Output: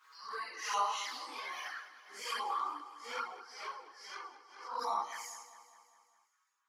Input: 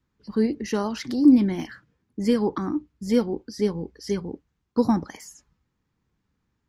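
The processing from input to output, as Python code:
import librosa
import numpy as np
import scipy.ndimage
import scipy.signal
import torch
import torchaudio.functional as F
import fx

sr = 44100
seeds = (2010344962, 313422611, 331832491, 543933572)

y = fx.phase_scramble(x, sr, seeds[0], window_ms=200)
y = fx.lowpass(y, sr, hz=2100.0, slope=6, at=(2.46, 4.79))
y = fx.chorus_voices(y, sr, voices=2, hz=0.3, base_ms=13, depth_ms=2.0, mix_pct=55)
y = fx.ladder_highpass(y, sr, hz=1000.0, resonance_pct=60)
y = fx.env_flanger(y, sr, rest_ms=6.3, full_db=-42.5)
y = fx.echo_feedback(y, sr, ms=202, feedback_pct=57, wet_db=-14.5)
y = fx.pre_swell(y, sr, db_per_s=82.0)
y = y * 10.0 ** (13.5 / 20.0)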